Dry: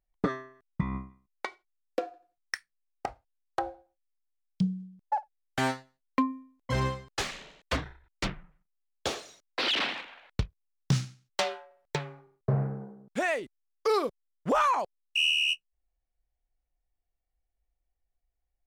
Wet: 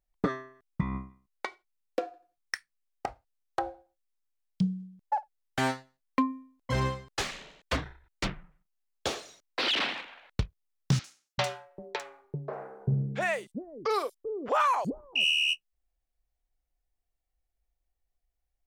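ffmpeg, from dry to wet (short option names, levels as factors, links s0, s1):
-filter_complex "[0:a]asettb=1/sr,asplit=3[s0][s1][s2];[s0]atrim=end=10.994[s3];[s1]atrim=start=10.99:end=15.25,asetpts=PTS-STARTPTS,afade=t=in:d=0.004:c=qsin,afade=t=out:st=4.256:d=0.004:c=qsin,acrossover=split=380|5700[s4][s5][s6];[s6]adelay=50[s7];[s4]adelay=390[s8];[s8][s5][s7]amix=inputs=3:normalize=0,atrim=end_sample=187866[s9];[s2]atrim=start=15.246[s10];[s3][s9]acrossfade=d=0.004:c1=hsin:c2=qsin[s11];[s11][s10]acrossfade=d=0.004:c1=qsin:c2=hsin"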